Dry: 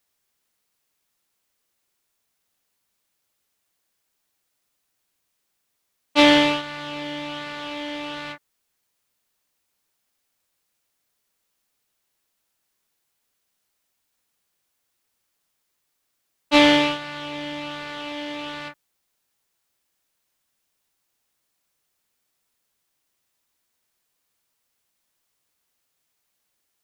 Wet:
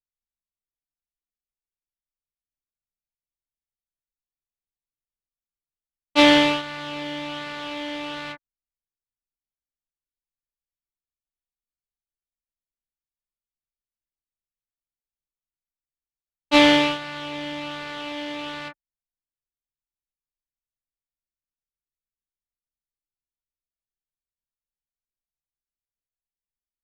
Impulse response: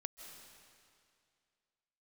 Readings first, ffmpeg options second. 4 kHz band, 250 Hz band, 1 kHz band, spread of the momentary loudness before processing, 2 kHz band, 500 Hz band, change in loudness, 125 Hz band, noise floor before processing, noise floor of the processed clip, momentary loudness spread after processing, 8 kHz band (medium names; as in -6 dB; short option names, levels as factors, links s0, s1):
0.0 dB, 0.0 dB, 0.0 dB, 18 LU, 0.0 dB, 0.0 dB, 0.0 dB, 0.0 dB, -76 dBFS, under -85 dBFS, 18 LU, 0.0 dB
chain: -af "anlmdn=0.1"